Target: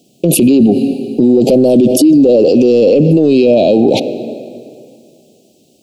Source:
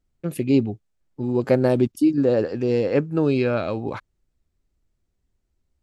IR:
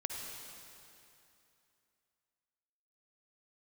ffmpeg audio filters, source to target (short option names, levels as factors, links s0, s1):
-filter_complex "[0:a]highpass=f=180:w=0.5412,highpass=f=180:w=1.3066,acontrast=90,asuperstop=centerf=1400:order=12:qfactor=0.74,asplit=2[s0][s1];[1:a]atrim=start_sample=2205,asetrate=52920,aresample=44100,lowpass=8400[s2];[s1][s2]afir=irnorm=-1:irlink=0,volume=0.126[s3];[s0][s3]amix=inputs=2:normalize=0,alimiter=level_in=21.1:limit=0.891:release=50:level=0:latency=1,volume=0.891"